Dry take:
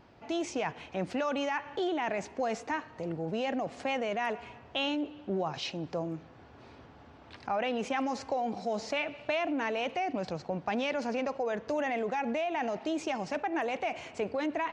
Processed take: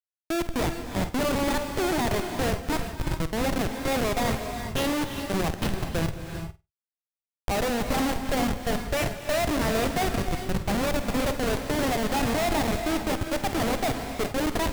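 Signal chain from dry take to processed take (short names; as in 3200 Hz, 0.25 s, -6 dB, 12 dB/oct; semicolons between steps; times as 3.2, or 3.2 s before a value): Schmitt trigger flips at -30 dBFS; flutter echo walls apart 8.5 m, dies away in 0.22 s; non-linear reverb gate 0.43 s rising, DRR 6 dB; gain +8.5 dB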